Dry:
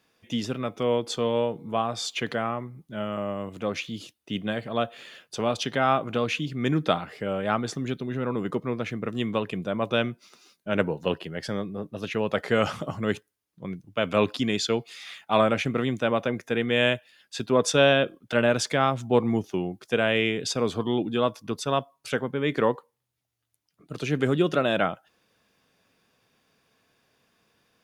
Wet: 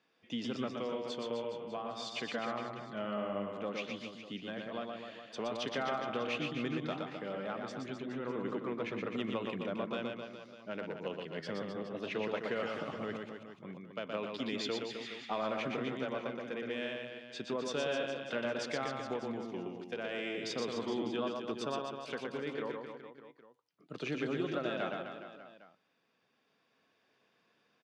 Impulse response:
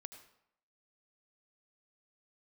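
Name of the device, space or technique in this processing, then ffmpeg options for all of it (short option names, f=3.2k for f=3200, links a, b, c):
AM radio: -af "highpass=190,lowpass=4.4k,acompressor=threshold=-26dB:ratio=6,asoftclip=type=tanh:threshold=-15.5dB,tremolo=f=0.33:d=0.38,aecho=1:1:120|258|416.7|599.2|809.1:0.631|0.398|0.251|0.158|0.1,volume=-6dB"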